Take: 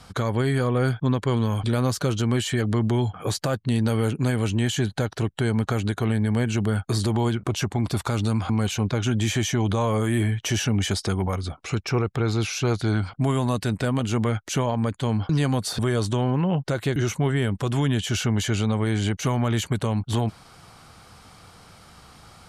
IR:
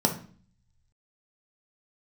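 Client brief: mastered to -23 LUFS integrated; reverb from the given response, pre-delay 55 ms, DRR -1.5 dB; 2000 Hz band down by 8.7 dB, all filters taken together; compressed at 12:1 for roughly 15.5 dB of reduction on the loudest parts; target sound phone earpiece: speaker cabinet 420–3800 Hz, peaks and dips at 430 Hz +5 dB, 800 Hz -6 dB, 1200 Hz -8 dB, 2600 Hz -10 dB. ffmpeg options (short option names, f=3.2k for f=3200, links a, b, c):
-filter_complex "[0:a]equalizer=f=2k:t=o:g=-7.5,acompressor=threshold=-35dB:ratio=12,asplit=2[a][b];[1:a]atrim=start_sample=2205,adelay=55[c];[b][c]afir=irnorm=-1:irlink=0,volume=-10.5dB[d];[a][d]amix=inputs=2:normalize=0,highpass=420,equalizer=f=430:t=q:w=4:g=5,equalizer=f=800:t=q:w=4:g=-6,equalizer=f=1.2k:t=q:w=4:g=-8,equalizer=f=2.6k:t=q:w=4:g=-10,lowpass=f=3.8k:w=0.5412,lowpass=f=3.8k:w=1.3066,volume=16.5dB"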